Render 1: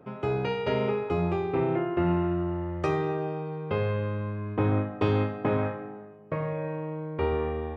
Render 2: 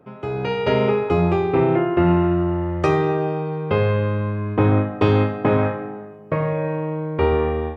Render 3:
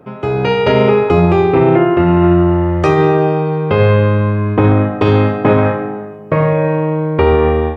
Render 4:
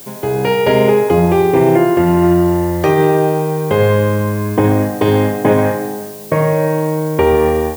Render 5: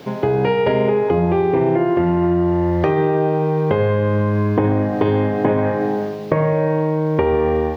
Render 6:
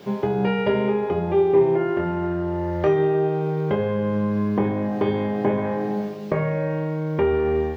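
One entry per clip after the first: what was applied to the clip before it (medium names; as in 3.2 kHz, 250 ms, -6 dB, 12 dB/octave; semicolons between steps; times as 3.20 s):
level rider gain up to 9 dB
loudness maximiser +10.5 dB; trim -1 dB
comb of notches 1.3 kHz; added noise blue -36 dBFS
compression 6:1, threshold -19 dBFS, peak gain reduction 11.5 dB; distance through air 280 m; trim +5.5 dB
feedback comb 200 Hz, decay 0.19 s, harmonics all, mix 80%; flutter echo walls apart 4.3 m, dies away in 0.21 s; trim +3 dB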